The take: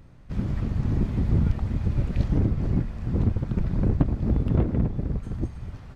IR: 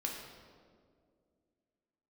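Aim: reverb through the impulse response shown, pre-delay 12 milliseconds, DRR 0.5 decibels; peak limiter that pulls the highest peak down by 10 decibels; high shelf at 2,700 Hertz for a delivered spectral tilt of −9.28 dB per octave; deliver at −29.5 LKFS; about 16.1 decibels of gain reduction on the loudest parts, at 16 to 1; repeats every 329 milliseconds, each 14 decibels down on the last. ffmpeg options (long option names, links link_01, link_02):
-filter_complex "[0:a]highshelf=frequency=2700:gain=4,acompressor=threshold=-31dB:ratio=16,alimiter=level_in=8dB:limit=-24dB:level=0:latency=1,volume=-8dB,aecho=1:1:329|658:0.2|0.0399,asplit=2[link_01][link_02];[1:a]atrim=start_sample=2205,adelay=12[link_03];[link_02][link_03]afir=irnorm=-1:irlink=0,volume=-2dB[link_04];[link_01][link_04]amix=inputs=2:normalize=0,volume=9.5dB"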